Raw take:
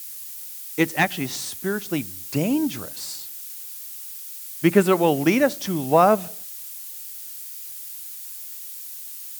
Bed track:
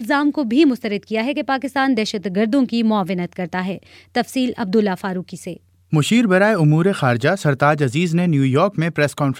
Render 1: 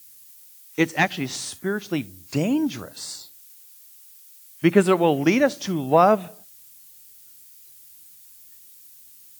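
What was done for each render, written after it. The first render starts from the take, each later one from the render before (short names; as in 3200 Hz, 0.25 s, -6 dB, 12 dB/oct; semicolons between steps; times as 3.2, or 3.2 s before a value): noise print and reduce 12 dB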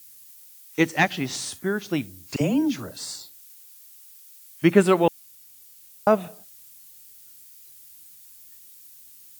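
2.36–3.12 dispersion lows, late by 47 ms, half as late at 560 Hz; 5.08–6.07 room tone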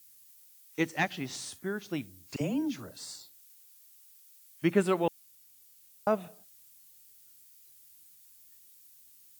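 gain -9 dB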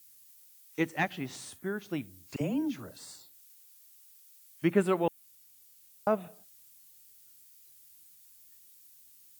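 dynamic EQ 5200 Hz, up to -7 dB, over -55 dBFS, Q 1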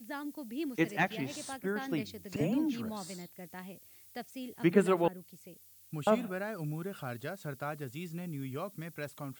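add bed track -23.5 dB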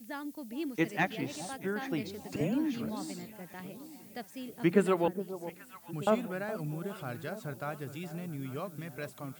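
echo with dull and thin repeats by turns 0.415 s, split 920 Hz, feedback 66%, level -12 dB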